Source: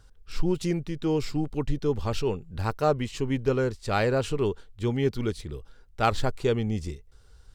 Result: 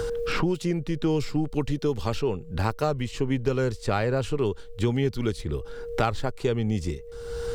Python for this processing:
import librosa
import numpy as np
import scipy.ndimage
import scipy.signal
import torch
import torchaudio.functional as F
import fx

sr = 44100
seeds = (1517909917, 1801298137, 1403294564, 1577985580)

y = x + 10.0 ** (-53.0 / 20.0) * np.sin(2.0 * np.pi * 470.0 * np.arange(len(x)) / sr)
y = fx.band_squash(y, sr, depth_pct=100)